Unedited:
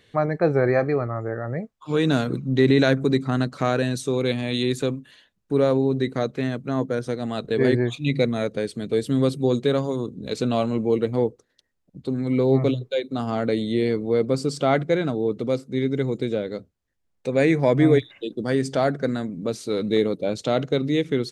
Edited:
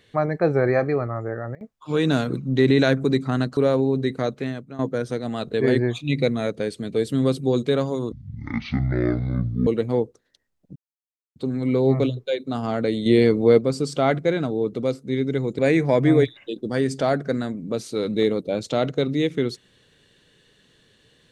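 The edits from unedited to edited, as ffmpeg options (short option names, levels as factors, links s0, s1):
-filter_complex "[0:a]asplit=11[s0][s1][s2][s3][s4][s5][s6][s7][s8][s9][s10];[s0]atrim=end=1.55,asetpts=PTS-STARTPTS,afade=t=out:st=1.12:d=0.43:c=log:silence=0.0668344[s11];[s1]atrim=start=1.55:end=1.61,asetpts=PTS-STARTPTS,volume=0.0668[s12];[s2]atrim=start=1.61:end=3.572,asetpts=PTS-STARTPTS,afade=t=in:d=0.43:c=log:silence=0.0668344[s13];[s3]atrim=start=5.538:end=6.76,asetpts=PTS-STARTPTS,afade=t=out:st=0.752:d=0.47:silence=0.188365[s14];[s4]atrim=start=6.76:end=10.094,asetpts=PTS-STARTPTS,afade=t=in:d=0.004:c=hsin:silence=0.188365[s15];[s5]atrim=start=10.09:end=10.91,asetpts=PTS-STARTPTS,asetrate=23373,aresample=44100,atrim=end_sample=68230,asetpts=PTS-STARTPTS[s16];[s6]atrim=start=10.906:end=12,asetpts=PTS-STARTPTS,afade=t=out:st=1.09:d=0.004:c=hsin,apad=pad_dur=0.6[s17];[s7]atrim=start=12:end=13.702,asetpts=PTS-STARTPTS,afade=t=in:d=0.004:c=hsin[s18];[s8]atrim=start=13.698:end=14.232,asetpts=PTS-STARTPTS,volume=2[s19];[s9]atrim=start=14.228:end=16.232[s20];[s10]atrim=start=17.328[s21];[s11][s12][s13]concat=n=3:v=0:a=1[s22];[s14][s15]concat=n=2:v=0:a=1[s23];[s22][s23]acrossfade=d=0.004:c1=hsin:c2=hsin[s24];[s24][s16]acrossfade=d=0.004:c1=hsin:c2=hsin[s25];[s17][s18]concat=n=2:v=0:a=1[s26];[s25][s26]acrossfade=d=0.004:c1=hsin:c2=hsin[s27];[s27][s19]acrossfade=d=0.004:c1=hsin:c2=hsin[s28];[s28][s20]acrossfade=d=0.004:c1=hsin:c2=hsin[s29];[s29][s21]acrossfade=d=0.004:c1=hsin:c2=hsin"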